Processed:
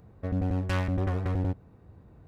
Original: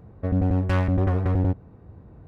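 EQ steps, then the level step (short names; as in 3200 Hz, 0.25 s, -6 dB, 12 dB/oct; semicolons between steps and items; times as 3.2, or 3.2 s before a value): high shelf 2500 Hz +11 dB; -6.5 dB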